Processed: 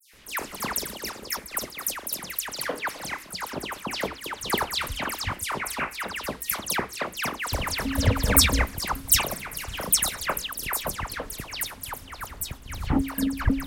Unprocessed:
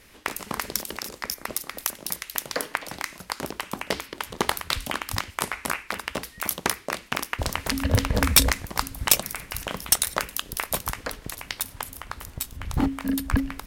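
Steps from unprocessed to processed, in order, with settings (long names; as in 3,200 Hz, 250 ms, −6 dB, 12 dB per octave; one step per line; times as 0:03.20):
all-pass dispersion lows, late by 136 ms, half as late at 2,800 Hz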